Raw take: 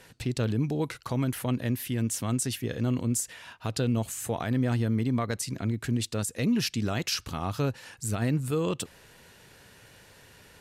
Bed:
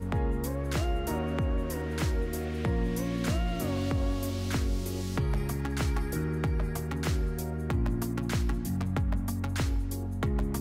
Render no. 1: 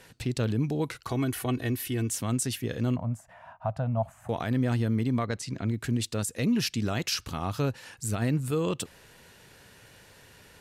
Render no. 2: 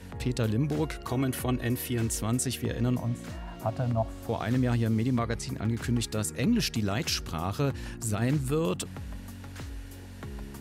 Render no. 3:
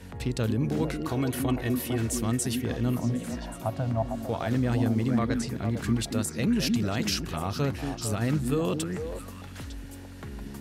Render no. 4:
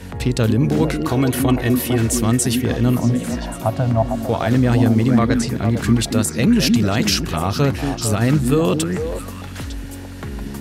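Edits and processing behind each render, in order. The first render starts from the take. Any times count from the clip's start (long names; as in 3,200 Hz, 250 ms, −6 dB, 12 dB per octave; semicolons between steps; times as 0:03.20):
0:01.07–0:02.10: comb filter 2.7 ms; 0:02.96–0:04.29: drawn EQ curve 180 Hz 0 dB, 420 Hz −22 dB, 640 Hz +11 dB, 4,200 Hz −24 dB; 0:05.25–0:05.68: high-frequency loss of the air 62 metres
mix in bed −11 dB
echo through a band-pass that steps 226 ms, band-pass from 240 Hz, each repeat 1.4 octaves, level −1 dB
level +10.5 dB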